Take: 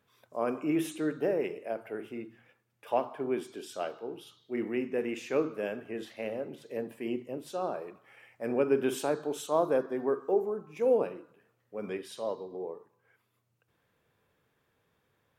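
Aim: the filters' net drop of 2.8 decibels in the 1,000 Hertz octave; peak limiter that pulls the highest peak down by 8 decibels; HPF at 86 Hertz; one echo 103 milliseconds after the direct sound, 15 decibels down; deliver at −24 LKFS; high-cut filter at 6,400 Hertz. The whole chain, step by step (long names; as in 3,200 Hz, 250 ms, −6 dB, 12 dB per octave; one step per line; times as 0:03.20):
high-pass filter 86 Hz
low-pass filter 6,400 Hz
parametric band 1,000 Hz −4 dB
brickwall limiter −22.5 dBFS
single-tap delay 103 ms −15 dB
level +11.5 dB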